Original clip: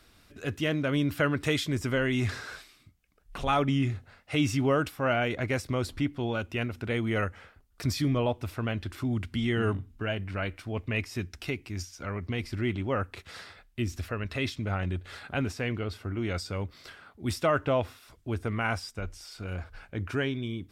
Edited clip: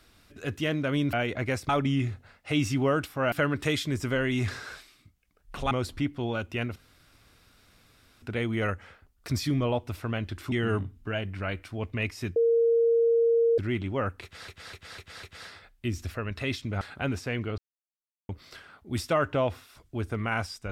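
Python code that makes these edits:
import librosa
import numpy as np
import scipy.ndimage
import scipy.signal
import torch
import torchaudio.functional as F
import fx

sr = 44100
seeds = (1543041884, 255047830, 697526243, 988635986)

y = fx.edit(x, sr, fx.swap(start_s=1.13, length_s=2.39, other_s=5.15, other_length_s=0.56),
    fx.insert_room_tone(at_s=6.76, length_s=1.46),
    fx.cut(start_s=9.06, length_s=0.4),
    fx.bleep(start_s=11.3, length_s=1.22, hz=463.0, db=-19.0),
    fx.repeat(start_s=13.17, length_s=0.25, count=5),
    fx.cut(start_s=14.75, length_s=0.39),
    fx.silence(start_s=15.91, length_s=0.71), tone=tone)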